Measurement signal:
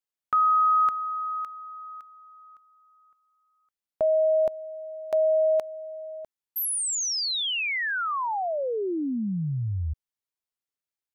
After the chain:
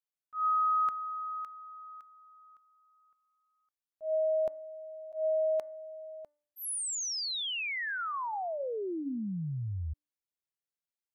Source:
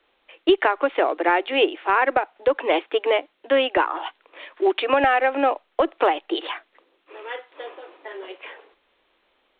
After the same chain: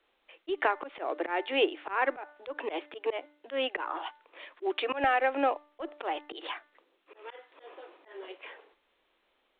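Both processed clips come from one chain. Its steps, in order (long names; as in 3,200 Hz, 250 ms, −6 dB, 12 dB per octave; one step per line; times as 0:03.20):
hum removal 295.8 Hz, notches 7
volume swells 136 ms
level −7 dB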